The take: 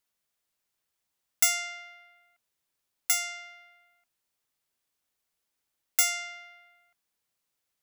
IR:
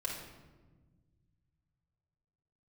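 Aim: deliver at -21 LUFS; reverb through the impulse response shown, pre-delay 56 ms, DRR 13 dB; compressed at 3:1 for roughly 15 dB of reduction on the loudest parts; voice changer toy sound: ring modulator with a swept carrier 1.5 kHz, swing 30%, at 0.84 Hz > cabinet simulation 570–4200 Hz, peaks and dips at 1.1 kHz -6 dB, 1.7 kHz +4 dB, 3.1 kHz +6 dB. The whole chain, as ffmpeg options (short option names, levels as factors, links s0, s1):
-filter_complex "[0:a]acompressor=threshold=0.01:ratio=3,asplit=2[s0][s1];[1:a]atrim=start_sample=2205,adelay=56[s2];[s1][s2]afir=irnorm=-1:irlink=0,volume=0.178[s3];[s0][s3]amix=inputs=2:normalize=0,aeval=exprs='val(0)*sin(2*PI*1500*n/s+1500*0.3/0.84*sin(2*PI*0.84*n/s))':c=same,highpass=570,equalizer=f=1100:t=q:w=4:g=-6,equalizer=f=1700:t=q:w=4:g=4,equalizer=f=3100:t=q:w=4:g=6,lowpass=f=4200:w=0.5412,lowpass=f=4200:w=1.3066,volume=23.7"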